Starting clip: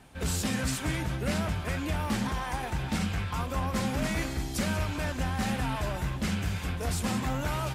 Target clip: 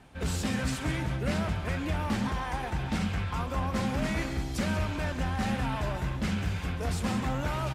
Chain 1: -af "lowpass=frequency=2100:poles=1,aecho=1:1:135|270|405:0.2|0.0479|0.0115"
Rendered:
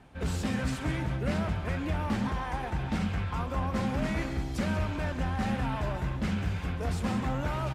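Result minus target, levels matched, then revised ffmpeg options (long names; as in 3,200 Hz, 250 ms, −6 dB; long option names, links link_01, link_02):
4,000 Hz band −3.0 dB
-af "lowpass=frequency=4400:poles=1,aecho=1:1:135|270|405:0.2|0.0479|0.0115"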